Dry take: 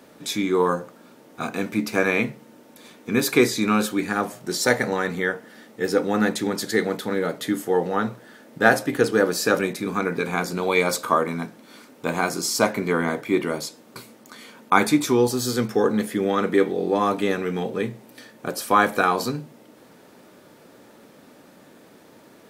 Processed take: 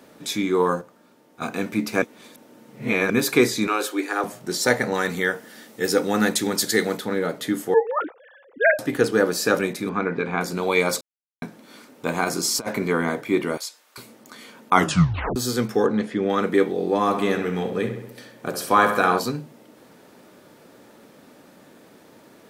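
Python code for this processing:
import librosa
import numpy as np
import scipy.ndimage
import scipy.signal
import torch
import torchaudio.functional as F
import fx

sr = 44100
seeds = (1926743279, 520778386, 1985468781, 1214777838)

y = fx.comb_fb(x, sr, f0_hz=100.0, decay_s=0.81, harmonics='all', damping=0.0, mix_pct=60, at=(0.81, 1.42))
y = fx.steep_highpass(y, sr, hz=280.0, slope=72, at=(3.67, 4.24))
y = fx.high_shelf(y, sr, hz=3600.0, db=10.0, at=(4.94, 6.99))
y = fx.sine_speech(y, sr, at=(7.74, 8.79))
y = fx.lowpass(y, sr, hz=2900.0, slope=12, at=(9.89, 10.41))
y = fx.over_compress(y, sr, threshold_db=-24.0, ratio=-0.5, at=(12.24, 12.87))
y = fx.highpass(y, sr, hz=1200.0, slope=12, at=(13.57, 13.98))
y = fx.air_absorb(y, sr, metres=110.0, at=(15.86, 16.3))
y = fx.echo_filtered(y, sr, ms=66, feedback_pct=59, hz=4200.0, wet_db=-8.0, at=(17.06, 19.18), fade=0.02)
y = fx.edit(y, sr, fx.reverse_span(start_s=2.02, length_s=1.08),
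    fx.silence(start_s=11.01, length_s=0.41),
    fx.tape_stop(start_s=14.73, length_s=0.63), tone=tone)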